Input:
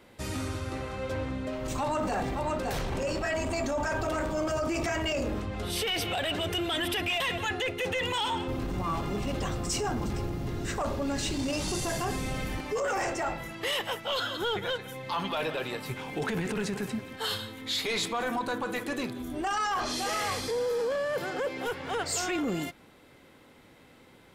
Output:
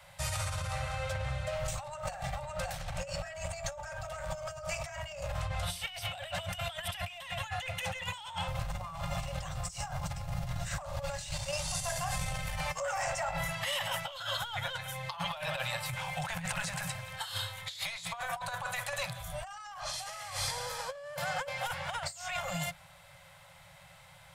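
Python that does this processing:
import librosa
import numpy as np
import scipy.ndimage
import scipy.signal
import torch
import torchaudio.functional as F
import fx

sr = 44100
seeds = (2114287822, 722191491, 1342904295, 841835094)

y = fx.notch(x, sr, hz=1000.0, q=7.2, at=(0.76, 4.73))
y = fx.over_compress(y, sr, threshold_db=-34.0, ratio=-1.0, at=(11.31, 14.08))
y = scipy.signal.sosfilt(scipy.signal.cheby1(5, 1.0, [170.0, 550.0], 'bandstop', fs=sr, output='sos'), y)
y = fx.peak_eq(y, sr, hz=8600.0, db=4.5, octaves=0.75)
y = fx.over_compress(y, sr, threshold_db=-36.0, ratio=-0.5)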